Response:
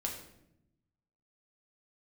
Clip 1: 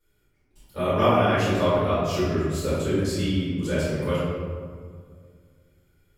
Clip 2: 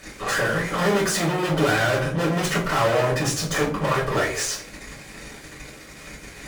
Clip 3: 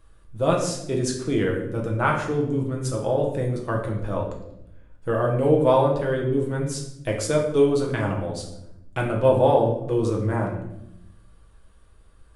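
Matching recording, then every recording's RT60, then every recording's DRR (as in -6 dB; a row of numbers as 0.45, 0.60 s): 3; 2.0, 0.50, 0.80 s; -14.5, -9.0, -1.0 dB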